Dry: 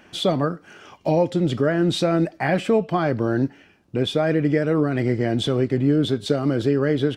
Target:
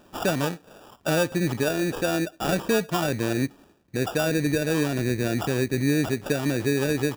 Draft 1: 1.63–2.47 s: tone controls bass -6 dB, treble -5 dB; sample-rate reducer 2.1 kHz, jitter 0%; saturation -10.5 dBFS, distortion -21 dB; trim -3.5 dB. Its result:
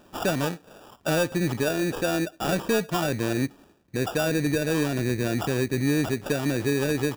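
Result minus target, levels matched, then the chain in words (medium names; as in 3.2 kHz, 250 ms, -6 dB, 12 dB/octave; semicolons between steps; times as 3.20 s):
saturation: distortion +10 dB
1.63–2.47 s: tone controls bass -6 dB, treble -5 dB; sample-rate reducer 2.1 kHz, jitter 0%; saturation -4.5 dBFS, distortion -32 dB; trim -3.5 dB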